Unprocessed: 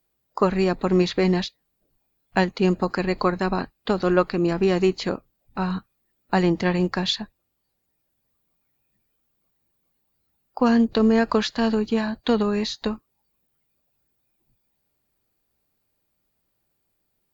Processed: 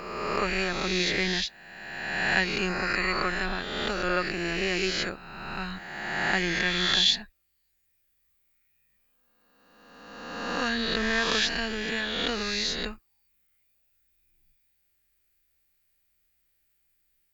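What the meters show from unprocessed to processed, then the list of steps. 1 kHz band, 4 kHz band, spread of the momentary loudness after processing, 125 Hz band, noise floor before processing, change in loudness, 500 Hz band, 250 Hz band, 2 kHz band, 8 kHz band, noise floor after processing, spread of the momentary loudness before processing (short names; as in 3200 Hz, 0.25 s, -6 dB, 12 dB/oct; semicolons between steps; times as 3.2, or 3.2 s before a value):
-5.0 dB, +5.0 dB, 12 LU, -10.5 dB, -74 dBFS, -4.0 dB, -9.5 dB, -11.5 dB, +5.5 dB, n/a, -72 dBFS, 10 LU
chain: spectral swells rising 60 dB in 1.65 s; graphic EQ 125/250/500/1000/2000/4000 Hz -12/-11/-9/-12/+5/-3 dB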